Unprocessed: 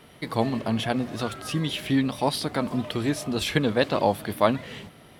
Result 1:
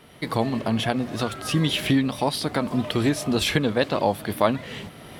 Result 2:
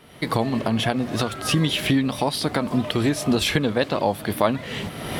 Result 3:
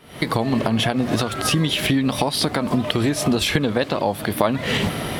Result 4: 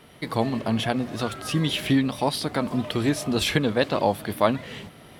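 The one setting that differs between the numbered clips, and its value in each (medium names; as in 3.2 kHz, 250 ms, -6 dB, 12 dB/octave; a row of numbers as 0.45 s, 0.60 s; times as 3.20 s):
recorder AGC, rising by: 14 dB/s, 34 dB/s, 87 dB/s, 5.4 dB/s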